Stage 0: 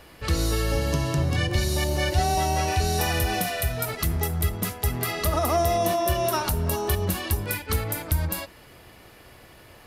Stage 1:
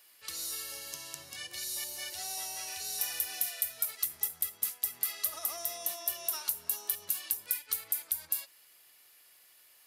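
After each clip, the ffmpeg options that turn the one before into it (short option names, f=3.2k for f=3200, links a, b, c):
-af "aderivative,volume=-3.5dB"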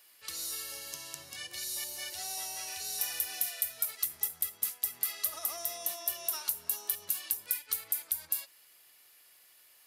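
-af anull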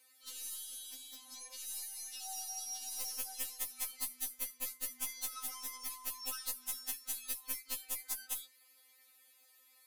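-af "aeval=exprs='0.282*(cos(1*acos(clip(val(0)/0.282,-1,1)))-cos(1*PI/2))+0.0224*(cos(3*acos(clip(val(0)/0.282,-1,1)))-cos(3*PI/2))+0.0708*(cos(7*acos(clip(val(0)/0.282,-1,1)))-cos(7*PI/2))+0.00794*(cos(8*acos(clip(val(0)/0.282,-1,1)))-cos(8*PI/2))':c=same,afftfilt=real='re*3.46*eq(mod(b,12),0)':imag='im*3.46*eq(mod(b,12),0)':win_size=2048:overlap=0.75,volume=-2dB"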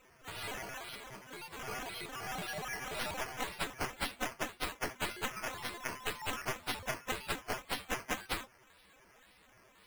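-af "acrusher=samples=9:mix=1:aa=0.000001:lfo=1:lforange=5.4:lforate=1.9,volume=2.5dB"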